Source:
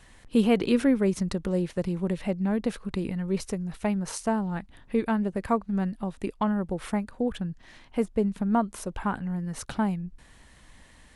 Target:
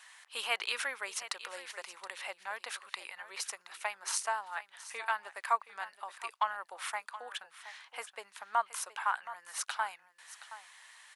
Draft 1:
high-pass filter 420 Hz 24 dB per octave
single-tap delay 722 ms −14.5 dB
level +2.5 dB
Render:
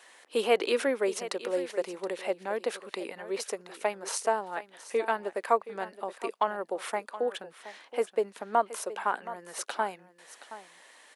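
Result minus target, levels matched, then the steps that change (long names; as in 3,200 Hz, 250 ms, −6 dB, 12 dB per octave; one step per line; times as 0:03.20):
500 Hz band +12.5 dB
change: high-pass filter 950 Hz 24 dB per octave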